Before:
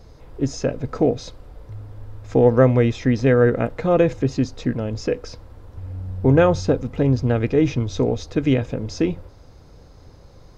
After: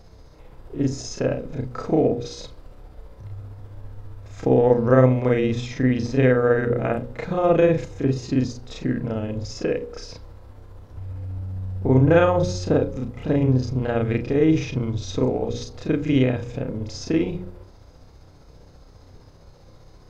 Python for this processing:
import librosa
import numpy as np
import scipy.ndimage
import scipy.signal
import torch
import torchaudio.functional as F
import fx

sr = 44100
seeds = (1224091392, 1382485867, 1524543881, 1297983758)

y = fx.hum_notches(x, sr, base_hz=60, count=9)
y = fx.stretch_grains(y, sr, factor=1.9, grain_ms=133.0)